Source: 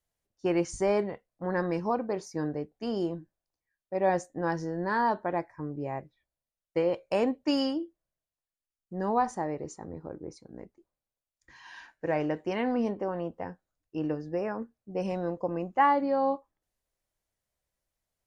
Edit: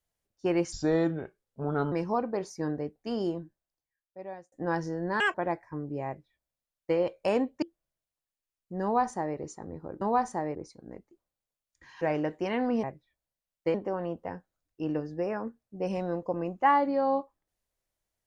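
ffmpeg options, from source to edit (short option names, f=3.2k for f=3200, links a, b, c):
-filter_complex "[0:a]asplit=12[a][b][c][d][e][f][g][h][i][j][k][l];[a]atrim=end=0.724[m];[b]atrim=start=0.72:end=1.68,asetpts=PTS-STARTPTS,asetrate=35280,aresample=44100[n];[c]atrim=start=1.676:end=4.28,asetpts=PTS-STARTPTS,afade=t=out:st=1.324:d=1.28[o];[d]atrim=start=4.28:end=4.964,asetpts=PTS-STARTPTS,afade=t=in:d=0.004:c=hsin[p];[e]atrim=start=4.96:end=5.21,asetpts=PTS-STARTPTS,asetrate=77175,aresample=44100[q];[f]atrim=start=5.206:end=7.492[r];[g]atrim=start=7.828:end=10.222[s];[h]atrim=start=9.038:end=9.582[t];[i]atrim=start=10.218:end=11.682[u];[j]atrim=start=12.068:end=12.892[v];[k]atrim=start=5.928:end=6.842[w];[l]atrim=start=12.888[x];[m][n]acrossfade=d=0.004:c1=hsin:c2=hsin[y];[o][p]concat=n=2:v=0:a=1[z];[y][z]acrossfade=d=0.004:c1=hsin:c2=hsin[aa];[aa][q]acrossfade=d=0.004:c1=hsin:c2=hsin[ab];[ab][r]acrossfade=d=0.004:c1=hsin:c2=hsin[ac];[ac][s]acrossfade=d=0.004:c1=hsin:c2=hsin[ad];[ad][t]acrossfade=d=0.004:c1=hsin:c2=hsin[ae];[ae][u]acrossfade=d=0.004:c1=hsin:c2=hsin[af];[af][v]acrossfade=d=0.004:c1=hsin:c2=hsin[ag];[ag][w]acrossfade=d=0.004:c1=hsin:c2=hsin[ah];[ah][x]acrossfade=d=0.004:c1=hsin:c2=hsin"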